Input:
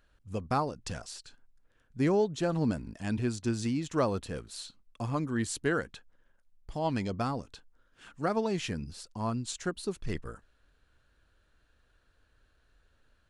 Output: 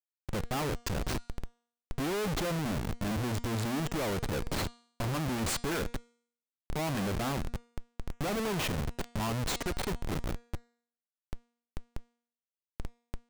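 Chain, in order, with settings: crackle 360/s -44 dBFS; Schmitt trigger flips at -38 dBFS; de-hum 237.1 Hz, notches 39; gain +3 dB

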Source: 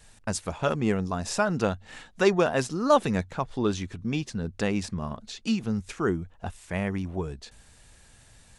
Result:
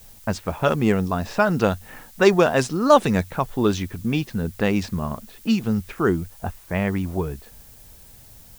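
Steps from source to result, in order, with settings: low-pass opened by the level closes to 830 Hz, open at -20 dBFS; added noise blue -55 dBFS; gain +6 dB

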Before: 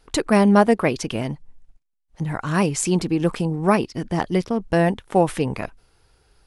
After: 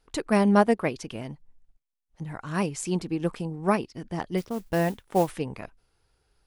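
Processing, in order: 4.37–5.31 modulation noise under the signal 21 dB; upward expander 1.5:1, over -24 dBFS; gain -4 dB

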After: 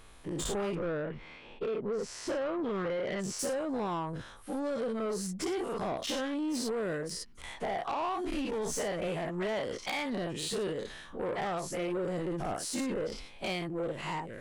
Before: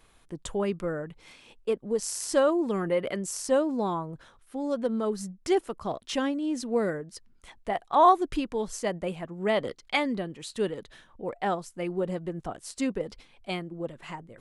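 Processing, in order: spectral dilation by 0.12 s; 0.74–3.38 LPF 2000 Hz -> 4600 Hz 12 dB/oct; compressor 12:1, threshold -26 dBFS, peak gain reduction 16 dB; soft clip -28.5 dBFS, distortion -13 dB

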